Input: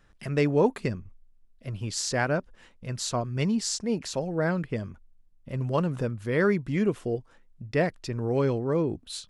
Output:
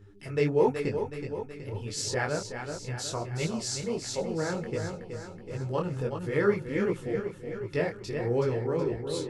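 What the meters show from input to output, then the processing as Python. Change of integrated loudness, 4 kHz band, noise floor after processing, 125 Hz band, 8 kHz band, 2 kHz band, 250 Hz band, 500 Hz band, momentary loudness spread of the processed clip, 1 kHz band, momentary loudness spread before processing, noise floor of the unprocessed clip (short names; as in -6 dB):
-3.0 dB, -2.0 dB, -46 dBFS, -3.5 dB, -2.0 dB, -2.5 dB, -4.5 dB, -0.5 dB, 10 LU, -2.0 dB, 11 LU, -59 dBFS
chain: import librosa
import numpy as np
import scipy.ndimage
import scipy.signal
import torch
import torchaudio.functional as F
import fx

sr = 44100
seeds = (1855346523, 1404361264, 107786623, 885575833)

p1 = x + fx.echo_feedback(x, sr, ms=373, feedback_pct=56, wet_db=-7.5, dry=0)
p2 = fx.dmg_buzz(p1, sr, base_hz=100.0, harmonics=4, level_db=-50.0, tilt_db=-4, odd_only=False)
p3 = p2 + 0.39 * np.pad(p2, (int(2.3 * sr / 1000.0), 0))[:len(p2)]
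y = fx.detune_double(p3, sr, cents=50)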